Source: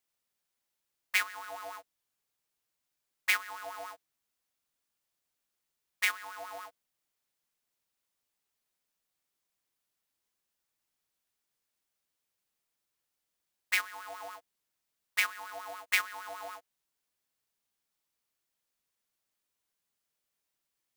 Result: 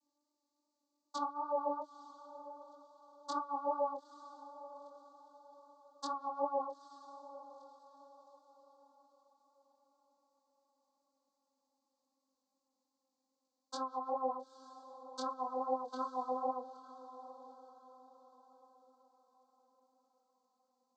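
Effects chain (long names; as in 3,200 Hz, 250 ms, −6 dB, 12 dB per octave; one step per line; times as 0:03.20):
vocoder with a gliding carrier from D4, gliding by −3 semitones
elliptic band-stop filter 1,100–4,200 Hz, stop band 50 dB
treble cut that deepens with the level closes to 1,300 Hz, closed at −40.5 dBFS
chorus effect 2.6 Hz, delay 19 ms, depth 5 ms
feedback delay with all-pass diffusion 903 ms, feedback 41%, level −14.5 dB
level +8.5 dB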